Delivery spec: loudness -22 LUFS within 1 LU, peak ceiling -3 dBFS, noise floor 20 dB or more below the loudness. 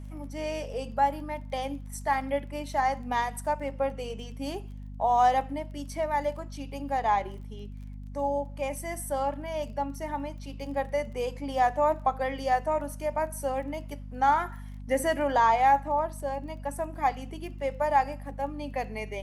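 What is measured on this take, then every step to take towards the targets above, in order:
ticks 21/s; hum 50 Hz; harmonics up to 250 Hz; hum level -38 dBFS; loudness -29.0 LUFS; peak -12.0 dBFS; loudness target -22.0 LUFS
-> de-click; de-hum 50 Hz, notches 5; gain +7 dB

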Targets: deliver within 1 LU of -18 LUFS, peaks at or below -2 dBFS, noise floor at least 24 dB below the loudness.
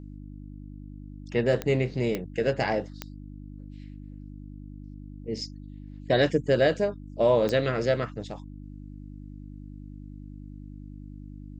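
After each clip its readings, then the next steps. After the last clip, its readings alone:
clicks 4; hum 50 Hz; harmonics up to 300 Hz; hum level -39 dBFS; loudness -26.5 LUFS; peak -10.5 dBFS; loudness target -18.0 LUFS
-> de-click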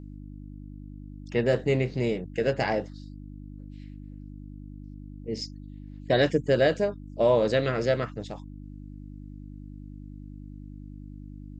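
clicks 0; hum 50 Hz; harmonics up to 300 Hz; hum level -39 dBFS
-> de-hum 50 Hz, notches 6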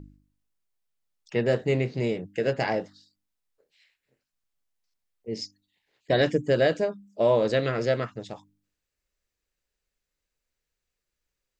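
hum none; loudness -26.0 LUFS; peak -10.5 dBFS; loudness target -18.0 LUFS
-> gain +8 dB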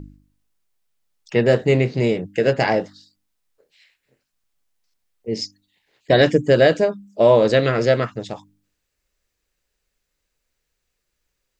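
loudness -18.0 LUFS; peak -2.5 dBFS; noise floor -77 dBFS

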